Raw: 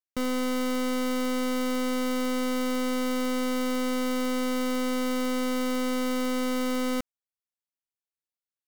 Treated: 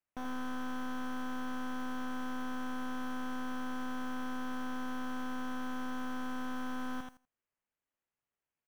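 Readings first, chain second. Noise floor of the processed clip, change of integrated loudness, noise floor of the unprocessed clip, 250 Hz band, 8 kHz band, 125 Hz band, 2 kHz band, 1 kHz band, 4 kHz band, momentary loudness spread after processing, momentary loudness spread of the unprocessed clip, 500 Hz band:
below −85 dBFS, −11.5 dB, below −85 dBFS, −11.5 dB, −17.5 dB, can't be measured, −7.5 dB, −6.5 dB, −15.0 dB, 0 LU, 0 LU, −19.5 dB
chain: phase distortion by the signal itself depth 0.42 ms
low-shelf EQ 150 Hz +5 dB
brickwall limiter −33 dBFS, peak gain reduction 10 dB
decimation without filtering 9×
hard clipping −35 dBFS, distortion −22 dB
parametric band 4,000 Hz −7.5 dB 0.28 octaves
noise that follows the level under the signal 25 dB
notch filter 3,600 Hz, Q 7.8
on a send: repeating echo 82 ms, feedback 16%, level −6.5 dB
on the sum: slew-rate limiting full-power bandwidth 19 Hz
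level −2 dB

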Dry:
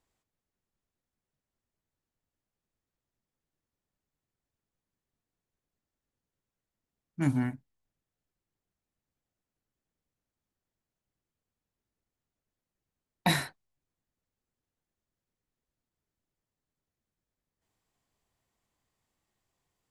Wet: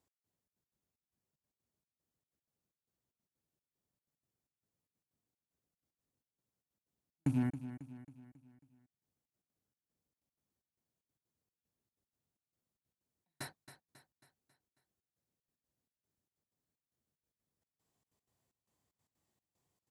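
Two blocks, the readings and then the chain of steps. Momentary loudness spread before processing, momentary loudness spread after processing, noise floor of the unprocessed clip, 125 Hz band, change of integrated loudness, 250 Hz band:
19 LU, 19 LU, below −85 dBFS, −6.5 dB, −8.5 dB, −5.5 dB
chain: loose part that buzzes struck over −30 dBFS, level −36 dBFS
high-pass filter 75 Hz
parametric band 2,000 Hz −6.5 dB 2.5 octaves
downward compressor 3 to 1, threshold −28 dBFS, peak gain reduction 5.5 dB
gate pattern "x..xxx.x.xx" 188 BPM −60 dB
on a send: repeating echo 272 ms, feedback 49%, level −12.5 dB

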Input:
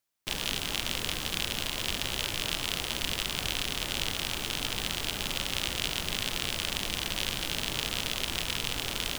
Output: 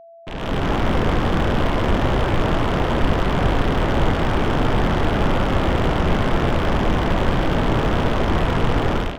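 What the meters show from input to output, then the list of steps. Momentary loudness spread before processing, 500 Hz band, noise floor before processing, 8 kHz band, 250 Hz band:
1 LU, +20.0 dB, −37 dBFS, −9.0 dB, +20.5 dB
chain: Bessel low-pass filter 1,100 Hz, order 2
automatic gain control gain up to 16.5 dB
steady tone 670 Hz −46 dBFS
slew-rate limiting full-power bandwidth 120 Hz
level +4.5 dB

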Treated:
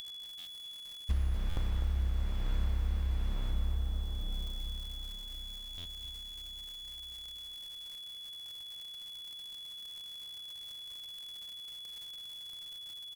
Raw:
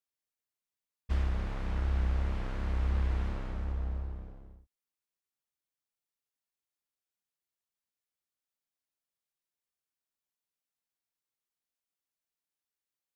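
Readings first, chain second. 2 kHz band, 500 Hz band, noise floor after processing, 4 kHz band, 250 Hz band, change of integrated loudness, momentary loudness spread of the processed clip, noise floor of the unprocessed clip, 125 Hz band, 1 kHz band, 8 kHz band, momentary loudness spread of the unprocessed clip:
−5.0 dB, −6.0 dB, −47 dBFS, +20.5 dB, −4.0 dB, −5.0 dB, 8 LU, below −85 dBFS, −1.0 dB, −6.0 dB, can't be measured, 8 LU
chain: steady tone 3,400 Hz −48 dBFS
surface crackle 250 per second −48 dBFS
high-shelf EQ 4,000 Hz +8.5 dB
repeating echo 1,105 ms, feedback 42%, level −20 dB
upward compression, threshold −47 dBFS
low-shelf EQ 120 Hz +11.5 dB
downward compressor 3 to 1, threshold −33 dBFS, peak gain reduction 12.5 dB
buffer that repeats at 0:00.38/0:01.49/0:05.77, samples 512, times 6
feedback echo at a low word length 251 ms, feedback 35%, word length 9 bits, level −9 dB
level +1.5 dB

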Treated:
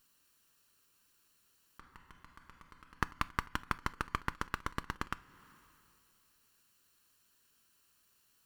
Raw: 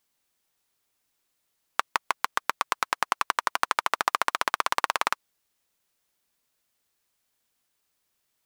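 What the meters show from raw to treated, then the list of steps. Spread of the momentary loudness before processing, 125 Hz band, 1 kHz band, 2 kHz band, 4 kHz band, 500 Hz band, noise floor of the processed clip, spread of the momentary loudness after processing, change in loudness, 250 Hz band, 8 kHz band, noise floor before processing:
4 LU, can't be measured, −15.0 dB, −13.0 dB, −16.5 dB, −14.5 dB, −72 dBFS, 21 LU, −12.0 dB, +1.0 dB, −18.0 dB, −77 dBFS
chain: lower of the sound and its delayed copy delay 0.71 ms
coupled-rooms reverb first 0.29 s, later 2.3 s, from −22 dB, DRR 19 dB
volume swells 435 ms
level +6.5 dB

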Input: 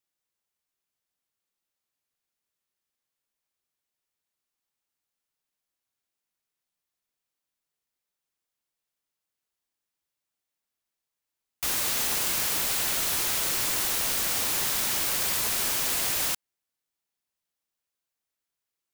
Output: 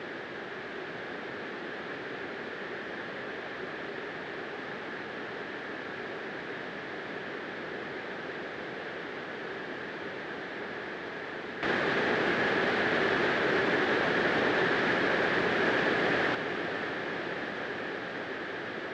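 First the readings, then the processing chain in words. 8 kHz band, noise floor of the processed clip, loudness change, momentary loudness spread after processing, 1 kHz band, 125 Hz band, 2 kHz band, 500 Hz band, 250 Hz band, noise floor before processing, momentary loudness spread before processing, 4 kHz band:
below −25 dB, −40 dBFS, −7.5 dB, 11 LU, +6.5 dB, +5.5 dB, +8.5 dB, +13.5 dB, +13.0 dB, below −85 dBFS, 2 LU, −5.5 dB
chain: converter with a step at zero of −31.5 dBFS
tilt shelving filter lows +7 dB
brickwall limiter −23 dBFS, peak gain reduction 5 dB
loudspeaker in its box 210–3,200 Hz, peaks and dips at 400 Hz +6 dB, 1,000 Hz −5 dB, 1,700 Hz +10 dB, 2,700 Hz −4 dB
feedback delay with all-pass diffusion 571 ms, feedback 77%, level −10.5 dB
level +6.5 dB
Ogg Vorbis 64 kbit/s 22,050 Hz

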